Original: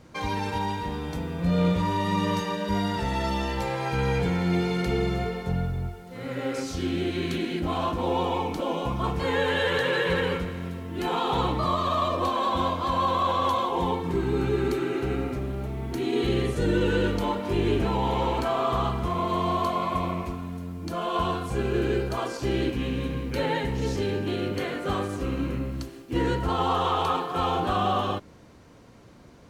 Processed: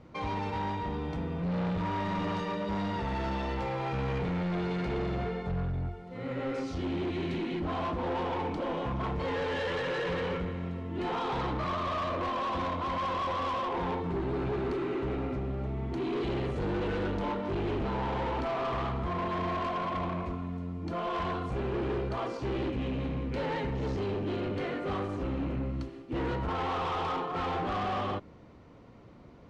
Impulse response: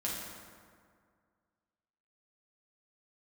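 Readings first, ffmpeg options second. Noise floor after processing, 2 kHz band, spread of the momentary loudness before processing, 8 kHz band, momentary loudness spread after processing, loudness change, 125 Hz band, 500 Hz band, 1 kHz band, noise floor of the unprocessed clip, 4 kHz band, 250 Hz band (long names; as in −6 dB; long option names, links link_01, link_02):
−49 dBFS, −6.5 dB, 7 LU, below −10 dB, 3 LU, −6.0 dB, −5.5 dB, −6.0 dB, −6.0 dB, −47 dBFS, −9.0 dB, −5.5 dB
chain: -af "bandreject=frequency=1600:width=12,asoftclip=type=hard:threshold=-27.5dB,adynamicsmooth=sensitivity=0.5:basefreq=3400,volume=-1.5dB"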